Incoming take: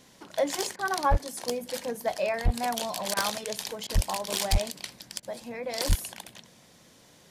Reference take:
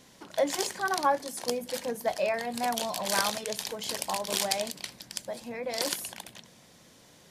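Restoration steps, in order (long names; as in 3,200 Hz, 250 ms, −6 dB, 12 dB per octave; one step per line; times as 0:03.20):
clipped peaks rebuilt −16 dBFS
high-pass at the plosives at 0:01.10/0:02.44/0:03.94/0:04.51/0:05.88
repair the gap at 0:00.76/0:03.14/0:03.87/0:05.20, 26 ms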